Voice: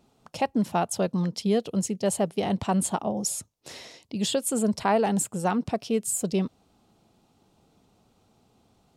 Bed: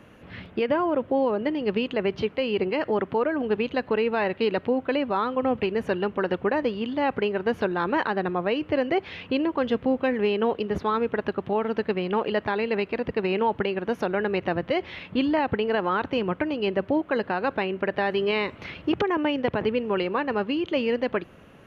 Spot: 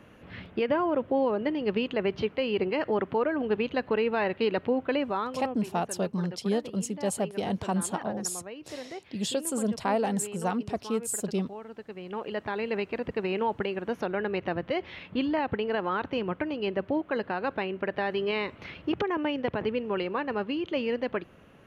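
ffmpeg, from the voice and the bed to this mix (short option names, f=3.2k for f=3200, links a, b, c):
-filter_complex "[0:a]adelay=5000,volume=-4dB[a];[1:a]volume=9.5dB,afade=t=out:st=4.98:d=0.64:silence=0.199526,afade=t=in:st=11.89:d=0.81:silence=0.251189[b];[a][b]amix=inputs=2:normalize=0"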